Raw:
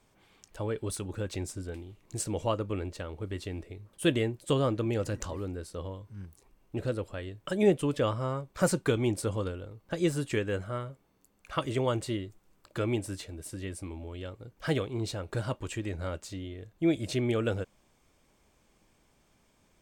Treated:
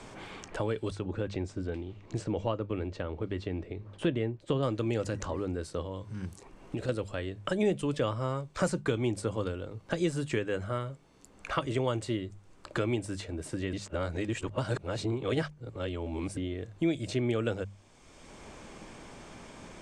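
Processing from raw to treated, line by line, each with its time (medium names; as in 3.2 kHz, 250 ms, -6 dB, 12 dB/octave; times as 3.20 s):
0.90–4.63 s: tape spacing loss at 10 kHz 25 dB
5.82–6.89 s: compression 4:1, threshold -38 dBFS
13.73–16.37 s: reverse
whole clip: low-pass 9 kHz 24 dB/octave; hum notches 50/100/150/200 Hz; three bands compressed up and down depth 70%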